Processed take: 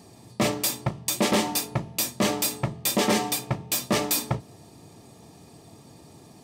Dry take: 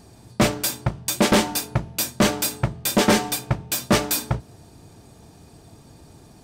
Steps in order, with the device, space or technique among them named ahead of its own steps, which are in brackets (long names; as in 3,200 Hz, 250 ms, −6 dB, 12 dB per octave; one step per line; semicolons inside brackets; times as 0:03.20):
PA system with an anti-feedback notch (high-pass filter 120 Hz 12 dB per octave; Butterworth band-reject 1,500 Hz, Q 6.3; brickwall limiter −13.5 dBFS, peak gain reduction 7 dB)